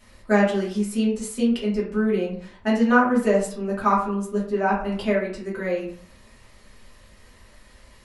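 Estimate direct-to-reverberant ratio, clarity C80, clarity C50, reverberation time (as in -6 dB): -7.0 dB, 10.0 dB, 6.0 dB, 0.55 s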